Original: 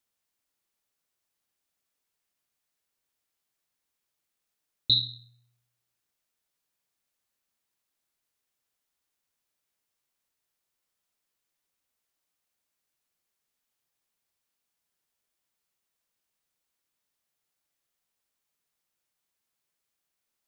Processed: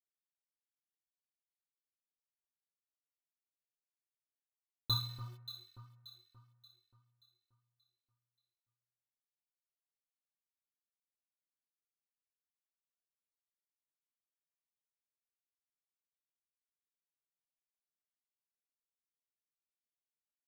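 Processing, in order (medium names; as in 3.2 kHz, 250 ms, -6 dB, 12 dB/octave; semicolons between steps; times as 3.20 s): median filter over 9 samples; in parallel at 0 dB: compression 16:1, threshold -37 dBFS, peak gain reduction 13.5 dB; on the sum: bit crusher 9-bit; inharmonic resonator 110 Hz, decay 0.27 s, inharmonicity 0.03; echo whose repeats swap between lows and highs 290 ms, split 1.6 kHz, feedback 63%, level -9 dB; trim +3 dB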